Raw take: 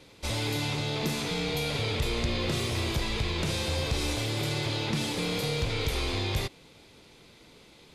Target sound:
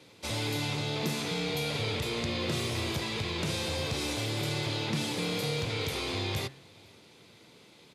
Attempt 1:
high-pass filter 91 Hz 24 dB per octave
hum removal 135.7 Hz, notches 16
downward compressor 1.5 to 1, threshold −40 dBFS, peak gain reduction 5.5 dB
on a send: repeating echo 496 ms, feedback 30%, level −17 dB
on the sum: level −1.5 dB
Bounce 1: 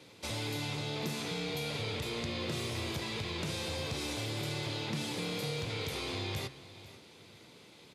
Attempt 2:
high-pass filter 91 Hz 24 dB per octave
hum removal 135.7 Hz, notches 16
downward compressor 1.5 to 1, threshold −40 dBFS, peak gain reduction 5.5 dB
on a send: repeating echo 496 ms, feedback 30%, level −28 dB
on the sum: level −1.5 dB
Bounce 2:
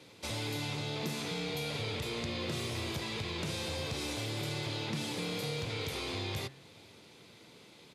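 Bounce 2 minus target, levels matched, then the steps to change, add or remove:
downward compressor: peak gain reduction +5.5 dB
remove: downward compressor 1.5 to 1, threshold −40 dBFS, peak gain reduction 5.5 dB

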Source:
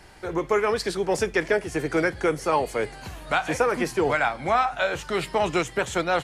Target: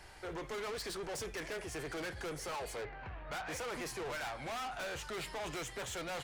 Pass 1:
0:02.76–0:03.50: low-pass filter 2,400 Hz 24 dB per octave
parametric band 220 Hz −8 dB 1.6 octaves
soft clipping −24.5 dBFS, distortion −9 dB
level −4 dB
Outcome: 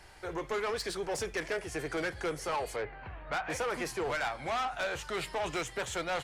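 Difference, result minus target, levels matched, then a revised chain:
soft clipping: distortion −6 dB
0:02.76–0:03.50: low-pass filter 2,400 Hz 24 dB per octave
parametric band 220 Hz −8 dB 1.6 octaves
soft clipping −34.5 dBFS, distortion −3 dB
level −4 dB

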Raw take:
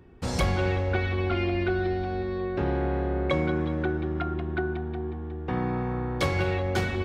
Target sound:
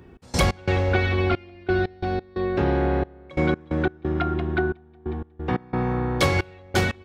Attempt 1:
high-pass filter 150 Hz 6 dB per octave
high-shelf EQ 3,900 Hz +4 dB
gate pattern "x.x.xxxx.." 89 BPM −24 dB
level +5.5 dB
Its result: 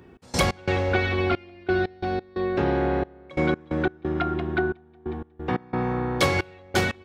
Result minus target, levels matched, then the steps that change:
125 Hz band −3.0 dB
change: high-pass filter 45 Hz 6 dB per octave

